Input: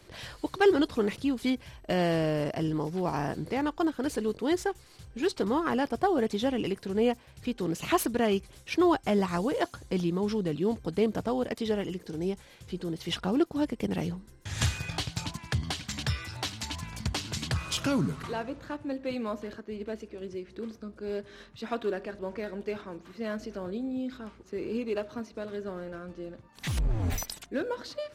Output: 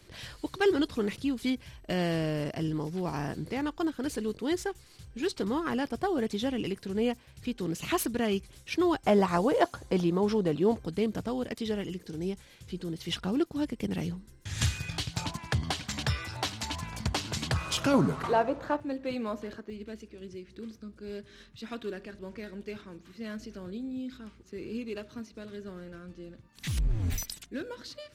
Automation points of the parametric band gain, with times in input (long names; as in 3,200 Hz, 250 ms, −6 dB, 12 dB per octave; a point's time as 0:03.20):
parametric band 730 Hz 2 octaves
−5.5 dB
from 0:09.03 +5.5 dB
from 0:10.85 −6 dB
from 0:15.14 +4.5 dB
from 0:17.94 +11 dB
from 0:18.80 −1 dB
from 0:19.70 −11 dB